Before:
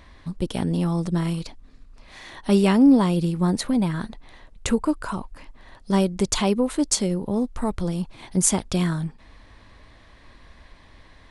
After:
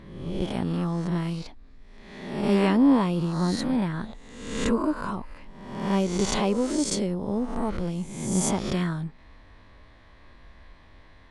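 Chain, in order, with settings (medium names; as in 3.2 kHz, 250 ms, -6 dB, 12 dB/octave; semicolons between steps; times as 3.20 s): reverse spectral sustain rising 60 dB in 0.94 s; treble shelf 5.8 kHz -11.5 dB; trim -4.5 dB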